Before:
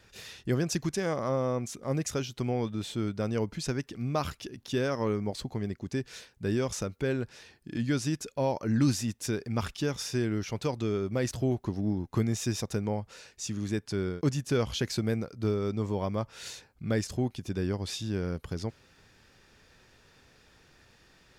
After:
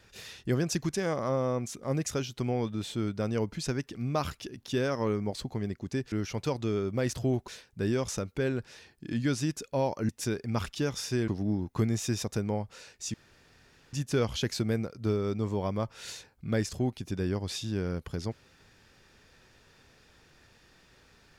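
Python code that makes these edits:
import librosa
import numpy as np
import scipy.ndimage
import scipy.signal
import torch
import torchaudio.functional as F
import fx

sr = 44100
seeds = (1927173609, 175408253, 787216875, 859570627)

y = fx.edit(x, sr, fx.cut(start_s=8.73, length_s=0.38),
    fx.move(start_s=10.3, length_s=1.36, to_s=6.12),
    fx.room_tone_fill(start_s=13.52, length_s=0.79), tone=tone)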